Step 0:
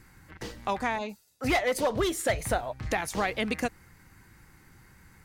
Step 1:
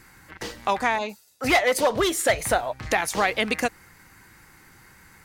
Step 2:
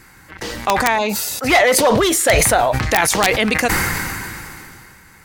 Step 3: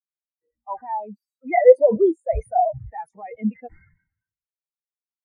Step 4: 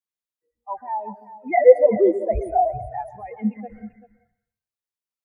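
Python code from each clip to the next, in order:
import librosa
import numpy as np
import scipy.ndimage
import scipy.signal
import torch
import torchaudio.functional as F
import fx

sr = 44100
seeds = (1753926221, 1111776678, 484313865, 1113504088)

y1 = fx.low_shelf(x, sr, hz=270.0, db=-10.0)
y1 = F.gain(torch.from_numpy(y1), 7.5).numpy()
y2 = (np.mod(10.0 ** (9.5 / 20.0) * y1 + 1.0, 2.0) - 1.0) / 10.0 ** (9.5 / 20.0)
y2 = fx.sustainer(y2, sr, db_per_s=23.0)
y2 = F.gain(torch.from_numpy(y2), 5.5).numpy()
y3 = fx.fold_sine(y2, sr, drive_db=3, ceiling_db=-1.0)
y3 = fx.spectral_expand(y3, sr, expansion=4.0)
y3 = F.gain(torch.from_numpy(y3), -1.5).numpy()
y4 = y3 + 10.0 ** (-15.0 / 20.0) * np.pad(y3, (int(387 * sr / 1000.0), 0))[:len(y3)]
y4 = fx.rev_plate(y4, sr, seeds[0], rt60_s=0.61, hf_ratio=0.75, predelay_ms=115, drr_db=14.0)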